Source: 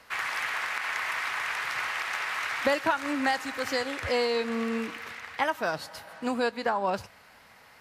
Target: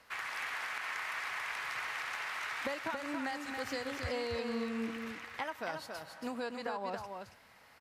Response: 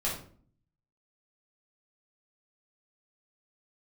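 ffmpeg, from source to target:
-filter_complex "[0:a]acompressor=threshold=-29dB:ratio=3,asettb=1/sr,asplit=3[link_01][link_02][link_03];[link_01]atrim=end=3.474[link_04];[link_02]atrim=start=3.47:end=5.13,asetpts=PTS-STARTPTS,afade=type=in:duration=0.004:curve=qsin,afade=type=out:start_time=1.656:duration=0.004:curve=qsin,lowshelf=frequency=170:gain=7.5[link_05];[link_03]atrim=start=5.126[link_06];[link_04][link_05]acrossfade=duration=0.004:curve1=hsin:curve2=qsin[link_07];[link_07][link_06]acrossfade=duration=0.004:curve1=qsin:curve2=hsin,aecho=1:1:277:0.531,volume=-7dB"

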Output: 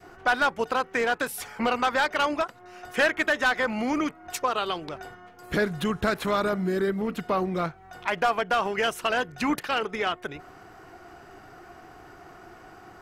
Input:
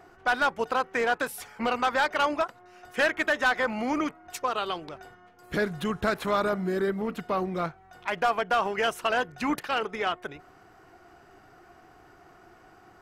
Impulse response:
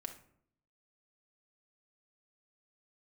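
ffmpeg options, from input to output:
-filter_complex "[0:a]adynamicequalizer=threshold=0.0126:dfrequency=840:dqfactor=0.72:tfrequency=840:tqfactor=0.72:attack=5:release=100:ratio=0.375:range=2:mode=cutabove:tftype=bell,asplit=2[link_01][link_02];[link_02]acompressor=threshold=-38dB:ratio=6,volume=-1dB[link_03];[link_01][link_03]amix=inputs=2:normalize=0,volume=1dB"

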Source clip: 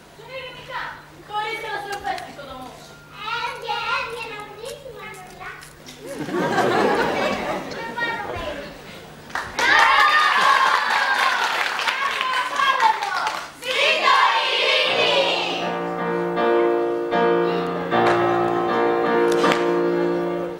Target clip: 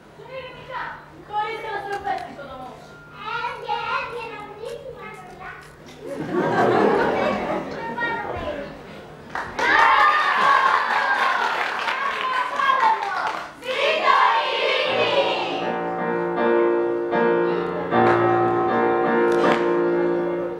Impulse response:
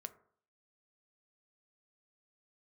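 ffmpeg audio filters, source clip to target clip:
-filter_complex "[0:a]highpass=42,highshelf=frequency=2700:gain=-12,asplit=2[link_01][link_02];[1:a]atrim=start_sample=2205,adelay=25[link_03];[link_02][link_03]afir=irnorm=-1:irlink=0,volume=1dB[link_04];[link_01][link_04]amix=inputs=2:normalize=0"

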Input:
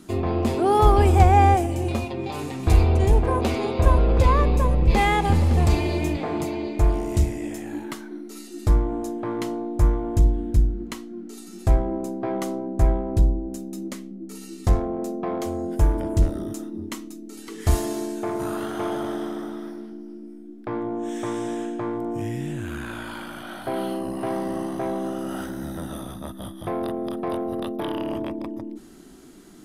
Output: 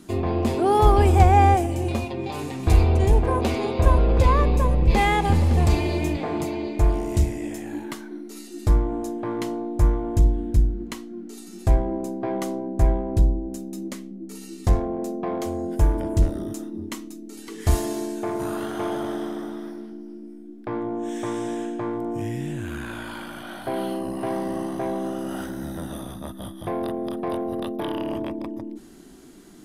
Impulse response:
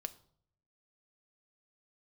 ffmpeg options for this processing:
-af "bandreject=frequency=1300:width=19"

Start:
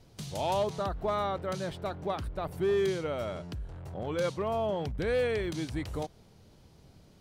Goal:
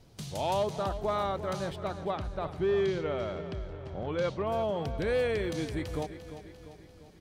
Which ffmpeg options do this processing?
ffmpeg -i in.wav -filter_complex "[0:a]asettb=1/sr,asplit=3[link_01][link_02][link_03];[link_01]atrim=end=1.764[link_04];[link_02]atrim=start=1.76:end=4.48,asetpts=PTS-STARTPTS,afade=type=in:duration=0.004:curve=qsin,afade=type=out:start_time=2.716:duration=0.004:curve=qsin,lowpass=4500[link_05];[link_03]atrim=start=4.476[link_06];[link_04][link_05]acrossfade=duration=0.004:curve1=hsin:curve2=qsin[link_07];[link_07][link_06]acrossfade=duration=0.004:curve1=qsin:curve2=hsin,aecho=1:1:346|692|1038|1384|1730|2076:0.237|0.128|0.0691|0.0373|0.0202|0.0109" out.wav

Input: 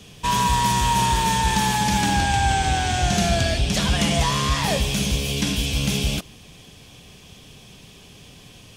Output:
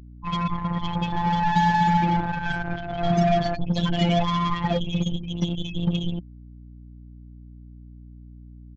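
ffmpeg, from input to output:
ffmpeg -i in.wav -filter_complex "[0:a]afftfilt=real='re*gte(hypot(re,im),0.158)':imag='im*gte(hypot(re,im),0.158)':win_size=1024:overlap=0.75,equalizer=frequency=420:width=3.6:gain=3,afftfilt=real='hypot(re,im)*cos(PI*b)':imag='0':win_size=1024:overlap=0.75,asplit=2[link_01][link_02];[link_02]acrusher=bits=3:mix=0:aa=0.5,volume=-5.5dB[link_03];[link_01][link_03]amix=inputs=2:normalize=0,aeval=exprs='val(0)+0.00794*(sin(2*PI*60*n/s)+sin(2*PI*2*60*n/s)/2+sin(2*PI*3*60*n/s)/3+sin(2*PI*4*60*n/s)/4+sin(2*PI*5*60*n/s)/5)':channel_layout=same,aresample=16000,aresample=44100" out.wav

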